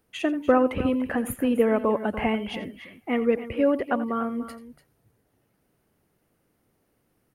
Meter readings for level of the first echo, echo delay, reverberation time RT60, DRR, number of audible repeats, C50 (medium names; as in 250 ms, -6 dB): -15.5 dB, 86 ms, no reverb, no reverb, 2, no reverb